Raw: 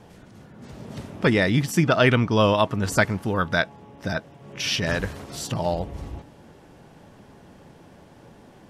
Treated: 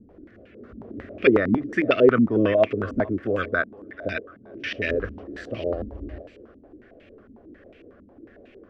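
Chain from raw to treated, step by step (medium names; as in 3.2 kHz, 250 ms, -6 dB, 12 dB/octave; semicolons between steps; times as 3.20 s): static phaser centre 370 Hz, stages 4; thinning echo 445 ms, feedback 38%, high-pass 430 Hz, level -17 dB; step-sequenced low-pass 11 Hz 230–2500 Hz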